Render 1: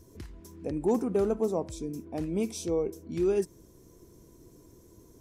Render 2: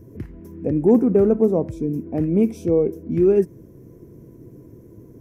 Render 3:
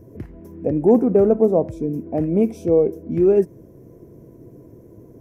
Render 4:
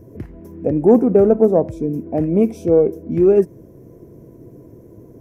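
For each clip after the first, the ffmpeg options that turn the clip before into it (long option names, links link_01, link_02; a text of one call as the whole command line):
ffmpeg -i in.wav -af "equalizer=frequency=125:width_type=o:width=1:gain=12,equalizer=frequency=250:width_type=o:width=1:gain=7,equalizer=frequency=500:width_type=o:width=1:gain=6,equalizer=frequency=1000:width_type=o:width=1:gain=-3,equalizer=frequency=2000:width_type=o:width=1:gain=5,equalizer=frequency=4000:width_type=o:width=1:gain=-12,equalizer=frequency=8000:width_type=o:width=1:gain=-11,volume=3dB" out.wav
ffmpeg -i in.wav -af "equalizer=frequency=660:width=1.5:gain=8.5,volume=-1.5dB" out.wav
ffmpeg -i in.wav -af "aeval=exprs='0.596*(cos(1*acos(clip(val(0)/0.596,-1,1)))-cos(1*PI/2))+0.015*(cos(3*acos(clip(val(0)/0.596,-1,1)))-cos(3*PI/2))':channel_layout=same,volume=3dB" out.wav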